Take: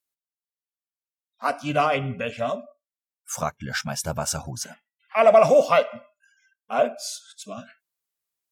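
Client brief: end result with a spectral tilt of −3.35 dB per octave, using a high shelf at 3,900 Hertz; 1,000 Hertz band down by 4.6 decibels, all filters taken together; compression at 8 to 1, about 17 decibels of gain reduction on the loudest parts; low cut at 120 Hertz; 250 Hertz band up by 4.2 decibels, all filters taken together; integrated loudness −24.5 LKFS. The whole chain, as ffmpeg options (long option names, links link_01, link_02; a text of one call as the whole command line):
ffmpeg -i in.wav -af "highpass=120,equalizer=frequency=250:width_type=o:gain=6,equalizer=frequency=1000:width_type=o:gain=-8.5,highshelf=frequency=3900:gain=5,acompressor=threshold=-31dB:ratio=8,volume=11dB" out.wav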